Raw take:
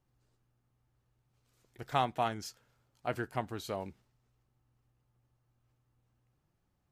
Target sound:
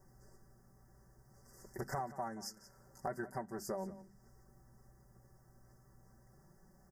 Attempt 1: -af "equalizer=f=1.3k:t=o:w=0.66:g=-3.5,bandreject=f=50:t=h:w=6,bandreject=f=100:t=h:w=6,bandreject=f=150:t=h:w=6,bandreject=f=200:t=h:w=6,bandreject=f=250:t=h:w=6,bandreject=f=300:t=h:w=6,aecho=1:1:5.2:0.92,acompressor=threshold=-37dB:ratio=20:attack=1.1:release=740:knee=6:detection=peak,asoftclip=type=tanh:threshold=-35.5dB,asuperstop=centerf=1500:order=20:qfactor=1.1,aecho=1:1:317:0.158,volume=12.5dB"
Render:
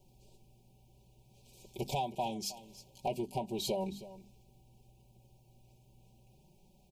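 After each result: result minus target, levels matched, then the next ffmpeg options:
echo 0.138 s late; 2000 Hz band -8.0 dB; compressor: peak gain reduction -6.5 dB
-af "equalizer=f=1.3k:t=o:w=0.66:g=-3.5,bandreject=f=50:t=h:w=6,bandreject=f=100:t=h:w=6,bandreject=f=150:t=h:w=6,bandreject=f=200:t=h:w=6,bandreject=f=250:t=h:w=6,bandreject=f=300:t=h:w=6,aecho=1:1:5.2:0.92,acompressor=threshold=-37dB:ratio=20:attack=1.1:release=740:knee=6:detection=peak,asoftclip=type=tanh:threshold=-35.5dB,asuperstop=centerf=1500:order=20:qfactor=1.1,aecho=1:1:179:0.158,volume=12.5dB"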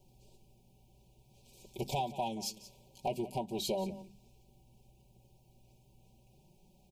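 2000 Hz band -8.0 dB; compressor: peak gain reduction -6.5 dB
-af "equalizer=f=1.3k:t=o:w=0.66:g=-3.5,bandreject=f=50:t=h:w=6,bandreject=f=100:t=h:w=6,bandreject=f=150:t=h:w=6,bandreject=f=200:t=h:w=6,bandreject=f=250:t=h:w=6,bandreject=f=300:t=h:w=6,aecho=1:1:5.2:0.92,acompressor=threshold=-37dB:ratio=20:attack=1.1:release=740:knee=6:detection=peak,asoftclip=type=tanh:threshold=-35.5dB,asuperstop=centerf=3100:order=20:qfactor=1.1,aecho=1:1:179:0.158,volume=12.5dB"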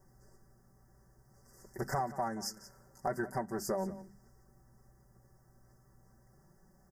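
compressor: peak gain reduction -6.5 dB
-af "equalizer=f=1.3k:t=o:w=0.66:g=-3.5,bandreject=f=50:t=h:w=6,bandreject=f=100:t=h:w=6,bandreject=f=150:t=h:w=6,bandreject=f=200:t=h:w=6,bandreject=f=250:t=h:w=6,bandreject=f=300:t=h:w=6,aecho=1:1:5.2:0.92,acompressor=threshold=-44dB:ratio=20:attack=1.1:release=740:knee=6:detection=peak,asoftclip=type=tanh:threshold=-35.5dB,asuperstop=centerf=3100:order=20:qfactor=1.1,aecho=1:1:179:0.158,volume=12.5dB"

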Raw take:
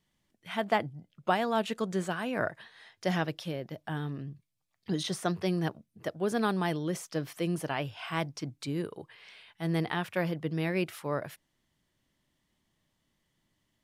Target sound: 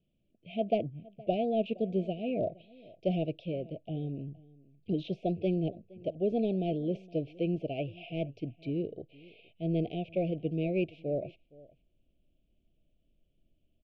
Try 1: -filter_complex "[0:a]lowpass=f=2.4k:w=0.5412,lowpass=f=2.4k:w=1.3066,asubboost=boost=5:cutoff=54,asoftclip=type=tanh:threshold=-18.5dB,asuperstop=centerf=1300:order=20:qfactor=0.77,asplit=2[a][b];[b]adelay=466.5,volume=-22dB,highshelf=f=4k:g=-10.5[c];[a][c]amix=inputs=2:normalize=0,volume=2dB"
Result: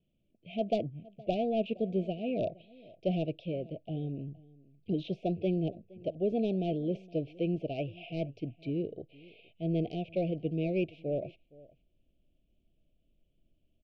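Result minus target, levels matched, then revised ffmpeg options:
soft clip: distortion +17 dB
-filter_complex "[0:a]lowpass=f=2.4k:w=0.5412,lowpass=f=2.4k:w=1.3066,asubboost=boost=5:cutoff=54,asoftclip=type=tanh:threshold=-8dB,asuperstop=centerf=1300:order=20:qfactor=0.77,asplit=2[a][b];[b]adelay=466.5,volume=-22dB,highshelf=f=4k:g=-10.5[c];[a][c]amix=inputs=2:normalize=0,volume=2dB"

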